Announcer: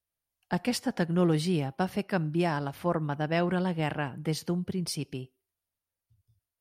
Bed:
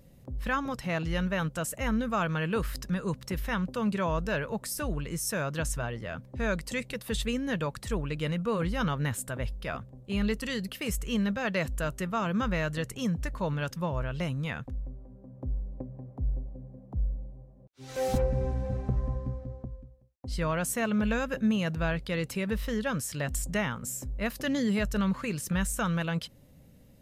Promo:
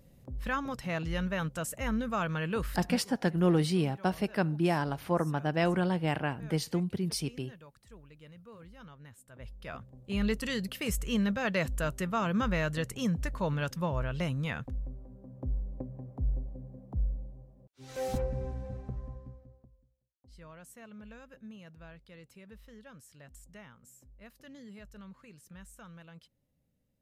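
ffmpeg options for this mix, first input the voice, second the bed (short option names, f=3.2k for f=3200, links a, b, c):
-filter_complex "[0:a]adelay=2250,volume=-0.5dB[a];[1:a]volume=18.5dB,afade=t=out:st=2.83:d=0.22:silence=0.112202,afade=t=in:st=9.27:d=1.06:silence=0.0841395,afade=t=out:st=16.82:d=2.89:silence=0.0891251[b];[a][b]amix=inputs=2:normalize=0"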